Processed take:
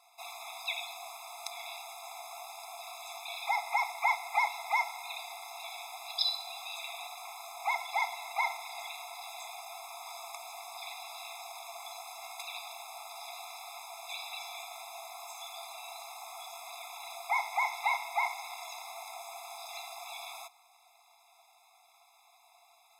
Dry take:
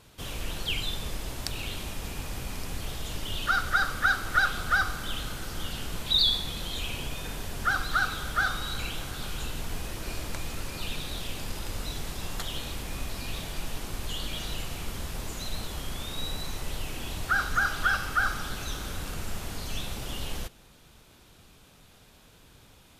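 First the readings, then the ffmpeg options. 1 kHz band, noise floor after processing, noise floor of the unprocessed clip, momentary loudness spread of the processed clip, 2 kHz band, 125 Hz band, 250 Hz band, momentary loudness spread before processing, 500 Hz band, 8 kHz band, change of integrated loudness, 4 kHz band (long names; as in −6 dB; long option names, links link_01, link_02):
−1.0 dB, −64 dBFS, −56 dBFS, 13 LU, −8.0 dB, below −40 dB, below −40 dB, 12 LU, −4.0 dB, −6.5 dB, −6.0 dB, −8.5 dB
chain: -af "aeval=exprs='val(0)*sin(2*PI*590*n/s)':channel_layout=same,afftfilt=real='re*eq(mod(floor(b*sr/1024/680),2),1)':imag='im*eq(mod(floor(b*sr/1024/680),2),1)':win_size=1024:overlap=0.75"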